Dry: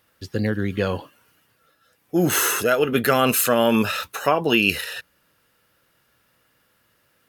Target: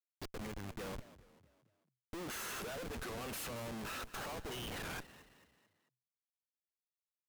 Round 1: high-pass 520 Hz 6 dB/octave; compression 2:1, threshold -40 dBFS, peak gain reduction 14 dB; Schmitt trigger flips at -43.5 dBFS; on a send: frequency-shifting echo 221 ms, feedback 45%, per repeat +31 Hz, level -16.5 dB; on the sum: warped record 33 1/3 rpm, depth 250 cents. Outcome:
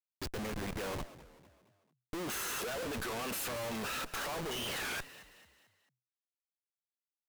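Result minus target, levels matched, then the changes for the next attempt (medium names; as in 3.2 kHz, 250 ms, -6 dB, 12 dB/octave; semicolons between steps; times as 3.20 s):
compression: peak gain reduction -5 dB
change: compression 2:1, threshold -50.5 dBFS, peak gain reduction 19 dB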